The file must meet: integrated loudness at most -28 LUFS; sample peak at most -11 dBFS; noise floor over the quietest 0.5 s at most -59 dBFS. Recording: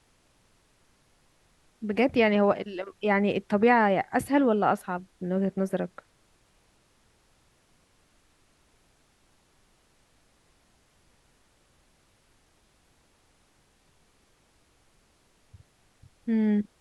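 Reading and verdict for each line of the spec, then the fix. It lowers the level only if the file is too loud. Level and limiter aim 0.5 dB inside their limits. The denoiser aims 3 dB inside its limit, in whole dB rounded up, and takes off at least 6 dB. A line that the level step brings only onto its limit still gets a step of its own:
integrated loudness -26.0 LUFS: fail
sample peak -9.0 dBFS: fail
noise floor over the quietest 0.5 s -65 dBFS: pass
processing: trim -2.5 dB

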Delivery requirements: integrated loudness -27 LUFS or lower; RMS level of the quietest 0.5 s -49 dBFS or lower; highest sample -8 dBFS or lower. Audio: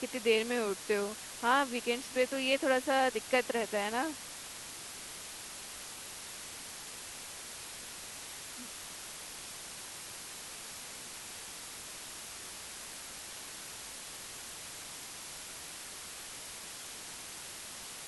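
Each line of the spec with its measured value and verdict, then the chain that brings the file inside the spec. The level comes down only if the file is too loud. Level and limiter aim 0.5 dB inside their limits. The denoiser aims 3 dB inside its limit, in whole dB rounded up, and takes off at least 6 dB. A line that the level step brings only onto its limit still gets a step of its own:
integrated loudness -37.0 LUFS: pass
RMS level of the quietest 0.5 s -46 dBFS: fail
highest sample -15.5 dBFS: pass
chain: noise reduction 6 dB, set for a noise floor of -46 dBFS

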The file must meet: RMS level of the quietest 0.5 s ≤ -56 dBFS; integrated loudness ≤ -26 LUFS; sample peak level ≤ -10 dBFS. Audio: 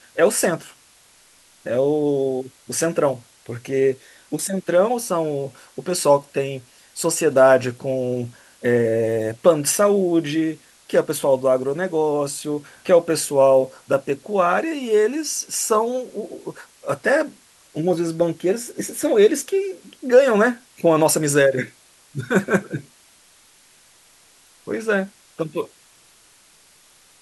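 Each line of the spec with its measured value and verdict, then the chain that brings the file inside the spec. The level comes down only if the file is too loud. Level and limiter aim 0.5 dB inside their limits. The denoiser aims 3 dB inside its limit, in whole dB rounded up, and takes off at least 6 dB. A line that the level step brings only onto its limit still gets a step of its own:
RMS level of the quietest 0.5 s -53 dBFS: fail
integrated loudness -20.0 LUFS: fail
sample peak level -2.5 dBFS: fail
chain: trim -6.5 dB; peak limiter -10.5 dBFS

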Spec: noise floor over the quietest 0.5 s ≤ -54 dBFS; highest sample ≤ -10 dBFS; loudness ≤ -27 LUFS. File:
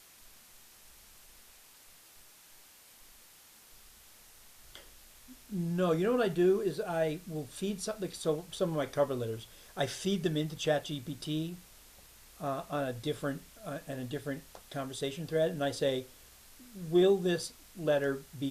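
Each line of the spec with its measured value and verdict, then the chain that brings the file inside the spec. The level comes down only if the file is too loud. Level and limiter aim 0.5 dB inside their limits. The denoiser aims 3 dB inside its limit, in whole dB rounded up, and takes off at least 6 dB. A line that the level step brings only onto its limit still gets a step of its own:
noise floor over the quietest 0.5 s -58 dBFS: pass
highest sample -16.5 dBFS: pass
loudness -33.0 LUFS: pass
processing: none needed

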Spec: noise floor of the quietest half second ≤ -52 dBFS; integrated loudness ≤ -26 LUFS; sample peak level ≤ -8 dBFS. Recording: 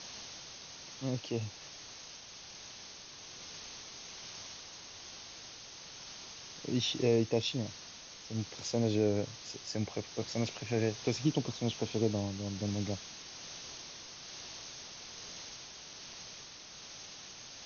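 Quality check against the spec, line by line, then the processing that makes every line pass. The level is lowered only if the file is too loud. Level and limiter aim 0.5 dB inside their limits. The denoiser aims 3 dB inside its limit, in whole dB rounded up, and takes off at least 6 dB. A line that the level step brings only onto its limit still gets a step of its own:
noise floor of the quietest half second -50 dBFS: fail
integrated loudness -38.0 LUFS: pass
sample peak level -17.0 dBFS: pass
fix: noise reduction 6 dB, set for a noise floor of -50 dBFS

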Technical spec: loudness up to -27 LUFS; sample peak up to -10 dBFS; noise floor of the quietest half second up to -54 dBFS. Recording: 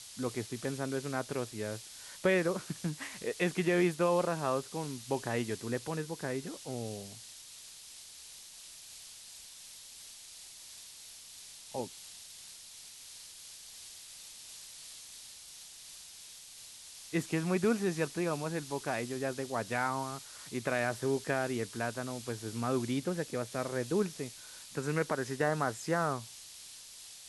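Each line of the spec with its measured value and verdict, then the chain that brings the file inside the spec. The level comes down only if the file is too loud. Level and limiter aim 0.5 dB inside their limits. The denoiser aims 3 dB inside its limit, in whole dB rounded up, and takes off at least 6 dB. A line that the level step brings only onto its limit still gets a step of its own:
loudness -34.5 LUFS: pass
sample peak -16.5 dBFS: pass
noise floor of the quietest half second -51 dBFS: fail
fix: noise reduction 6 dB, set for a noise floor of -51 dBFS

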